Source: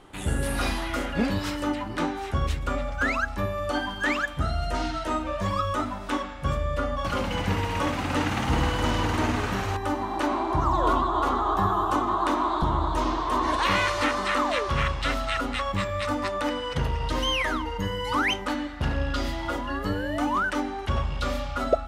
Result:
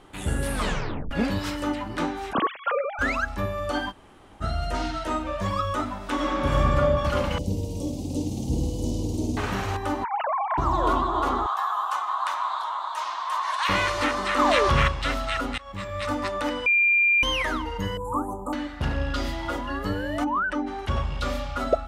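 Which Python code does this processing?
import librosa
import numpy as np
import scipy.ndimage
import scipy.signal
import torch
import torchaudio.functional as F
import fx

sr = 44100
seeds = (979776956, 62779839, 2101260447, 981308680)

y = fx.sine_speech(x, sr, at=(2.33, 2.99))
y = fx.reverb_throw(y, sr, start_s=6.14, length_s=0.62, rt60_s=2.8, drr_db=-7.0)
y = fx.cheby1_bandstop(y, sr, low_hz=390.0, high_hz=5900.0, order=2, at=(7.38, 9.37))
y = fx.sine_speech(y, sr, at=(10.04, 10.58))
y = fx.highpass(y, sr, hz=860.0, slope=24, at=(11.46, 13.69))
y = fx.env_flatten(y, sr, amount_pct=70, at=(14.38, 14.87), fade=0.02)
y = fx.cheby1_bandstop(y, sr, low_hz=1200.0, high_hz=7300.0, order=5, at=(17.97, 18.53))
y = fx.spec_expand(y, sr, power=1.5, at=(20.23, 20.66), fade=0.02)
y = fx.edit(y, sr, fx.tape_stop(start_s=0.53, length_s=0.58),
    fx.room_tone_fill(start_s=3.91, length_s=0.51, crossfade_s=0.04),
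    fx.fade_in_from(start_s=15.58, length_s=0.51, floor_db=-23.0),
    fx.bleep(start_s=16.66, length_s=0.57, hz=2390.0, db=-16.5), tone=tone)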